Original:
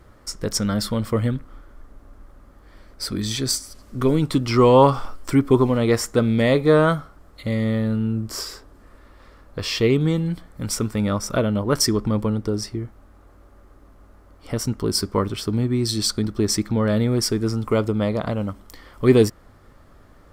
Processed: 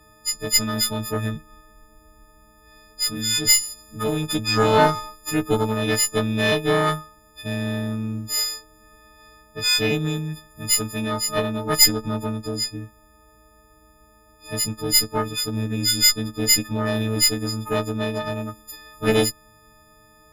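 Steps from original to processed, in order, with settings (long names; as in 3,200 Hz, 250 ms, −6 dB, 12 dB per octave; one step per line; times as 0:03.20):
every partial snapped to a pitch grid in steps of 6 semitones
harmonic generator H 4 −12 dB, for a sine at 3.5 dBFS
level −5 dB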